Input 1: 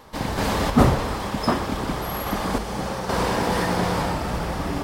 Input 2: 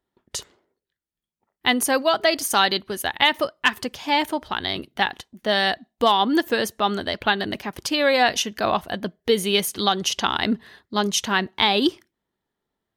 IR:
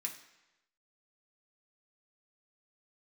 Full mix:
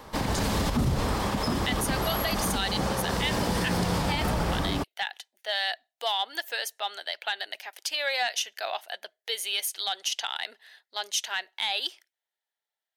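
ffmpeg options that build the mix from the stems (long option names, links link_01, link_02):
-filter_complex "[0:a]acrossover=split=270|3000[link_01][link_02][link_03];[link_02]acompressor=threshold=-28dB:ratio=6[link_04];[link_01][link_04][link_03]amix=inputs=3:normalize=0,volume=1.5dB[link_05];[1:a]highpass=frequency=720:width=0.5412,highpass=frequency=720:width=1.3066,equalizer=frequency=1100:width_type=o:width=0.57:gain=-14,acontrast=82,volume=-10dB[link_06];[link_05][link_06]amix=inputs=2:normalize=0,alimiter=limit=-17.5dB:level=0:latency=1:release=58"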